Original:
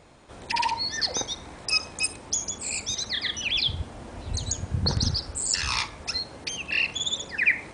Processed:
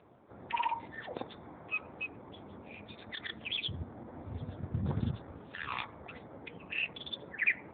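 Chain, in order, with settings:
adaptive Wiener filter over 15 samples
level −3.5 dB
AMR narrowband 6.7 kbit/s 8,000 Hz

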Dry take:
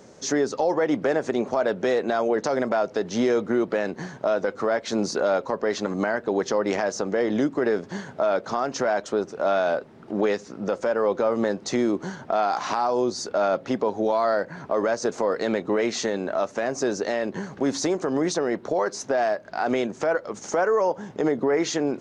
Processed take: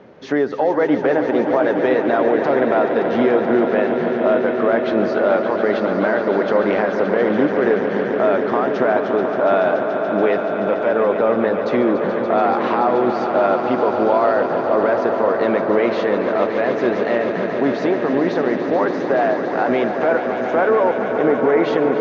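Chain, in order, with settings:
low-pass filter 3,100 Hz 24 dB per octave
low-shelf EQ 70 Hz −9.5 dB
on a send: echo that builds up and dies away 143 ms, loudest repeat 5, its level −10.5 dB
on the sum: level +5 dB

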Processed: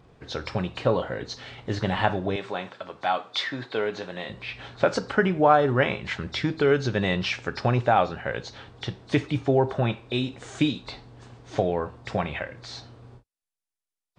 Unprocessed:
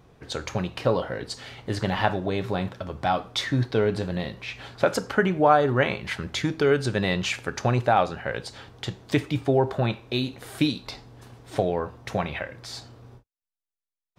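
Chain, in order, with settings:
hearing-aid frequency compression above 3,500 Hz 1.5 to 1
0:02.36–0:04.30: meter weighting curve A

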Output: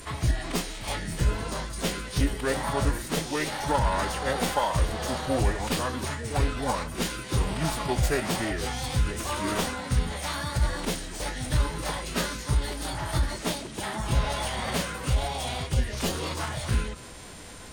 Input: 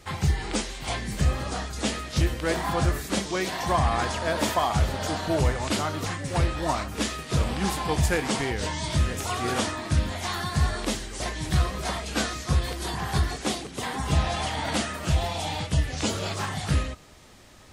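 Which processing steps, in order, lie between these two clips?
stylus tracing distortion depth 0.065 ms
steady tone 9,000 Hz −40 dBFS
phase-vocoder pitch shift with formants kept −3.5 semitones
level −1 dB

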